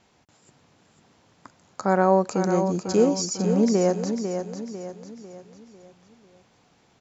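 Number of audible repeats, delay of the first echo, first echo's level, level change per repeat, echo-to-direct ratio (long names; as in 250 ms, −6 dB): 4, 498 ms, −7.5 dB, −7.0 dB, −6.5 dB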